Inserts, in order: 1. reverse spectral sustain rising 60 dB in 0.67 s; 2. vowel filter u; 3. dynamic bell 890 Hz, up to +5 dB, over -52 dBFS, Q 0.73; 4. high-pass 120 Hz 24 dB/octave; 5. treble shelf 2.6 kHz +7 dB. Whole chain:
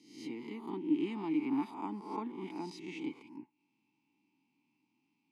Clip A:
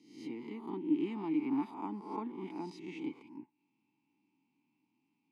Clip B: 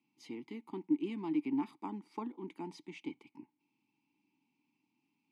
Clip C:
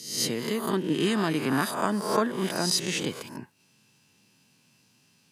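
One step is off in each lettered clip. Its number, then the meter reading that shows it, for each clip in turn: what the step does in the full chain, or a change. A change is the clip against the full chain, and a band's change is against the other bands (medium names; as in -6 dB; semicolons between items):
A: 5, 4 kHz band -4.5 dB; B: 1, 125 Hz band +2.0 dB; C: 2, 250 Hz band -11.0 dB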